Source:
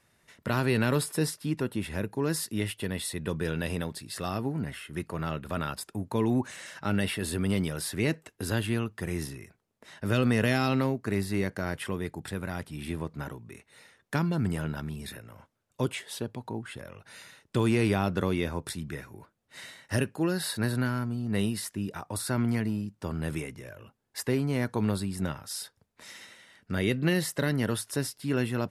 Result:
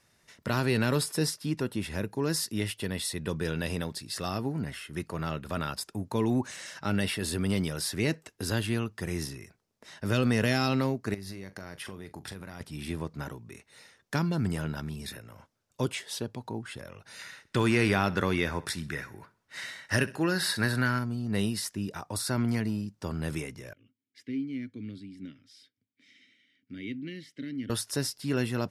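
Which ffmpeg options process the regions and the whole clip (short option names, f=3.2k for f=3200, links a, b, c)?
-filter_complex "[0:a]asettb=1/sr,asplit=3[a][b][c];[a]atrim=end=11.144[d];[b]atrim=start=11.14:end=12.61,asetpts=PTS-STARTPTS,afade=t=in:d=0.004:c=qsin,afade=t=out:st=1.466:d=0.004:c=qsin,bandreject=f=7.7k:w=7,acompressor=threshold=-36dB:ratio=16:attack=3.2:release=140:knee=1:detection=peak,asplit=2[e][f];[f]adelay=41,volume=-14dB[g];[e][g]amix=inputs=2:normalize=0,atrim=end_sample=64827[h];[c]atrim=start=12.606[i];[d][h]acrossfade=d=0.004:c1=hsin:c2=qsin[j];[j][i]acrossfade=d=0.004:c1=qsin:c2=hsin,asettb=1/sr,asplit=3[k][l][m];[k]atrim=end=17.194[n];[l]atrim=start=17.19:end=20.99,asetpts=PTS-STARTPTS,afade=t=in:d=0.004:c=qsin,afade=t=out:st=3.796:d=0.004:c=qsin,equalizer=f=1.7k:w=1:g=8,aecho=1:1:65|130|195:0.1|0.044|0.0194,atrim=end_sample=167580[o];[m]atrim=start=20.986[p];[n][o]acrossfade=d=0.004:c1=hsin:c2=qsin[q];[q][p]acrossfade=d=0.004:c1=qsin:c2=hsin,asettb=1/sr,asplit=3[r][s][t];[r]atrim=end=23.734[u];[s]atrim=start=23.73:end=27.7,asetpts=PTS-STARTPTS,afade=t=in:d=0.004:c=qsin,afade=t=out:st=3.966:d=0.004:c=qsin,asplit=3[v][w][x];[v]bandpass=f=270:t=q:w=8,volume=0dB[y];[w]bandpass=f=2.29k:t=q:w=8,volume=-6dB[z];[x]bandpass=f=3.01k:t=q:w=8,volume=-9dB[aa];[y][z][aa]amix=inputs=3:normalize=0,equalizer=f=110:w=3.6:g=12.5[ab];[t]atrim=start=27.696[ac];[u][ab]acrossfade=d=0.004:c1=hsin:c2=qsin[ad];[ad][ac]acrossfade=d=0.004:c1=qsin:c2=hsin,equalizer=f=5.4k:w=1.6:g=6.5,acontrast=62,volume=-7dB"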